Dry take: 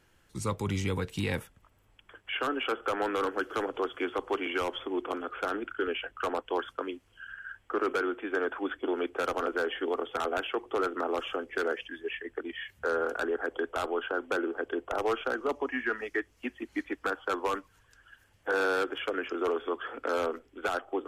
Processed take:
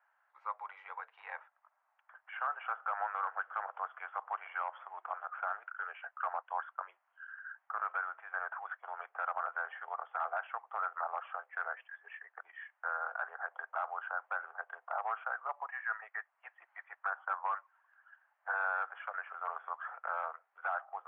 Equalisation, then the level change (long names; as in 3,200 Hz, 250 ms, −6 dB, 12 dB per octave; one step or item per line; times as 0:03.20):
Butterworth high-pass 690 Hz 48 dB per octave
low-pass filter 1,600 Hz 24 dB per octave
−1.5 dB